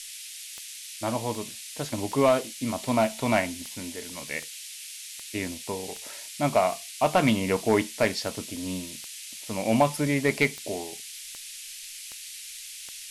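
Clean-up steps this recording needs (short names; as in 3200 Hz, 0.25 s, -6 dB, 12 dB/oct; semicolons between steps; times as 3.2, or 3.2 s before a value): clip repair -12 dBFS; de-click; noise print and reduce 29 dB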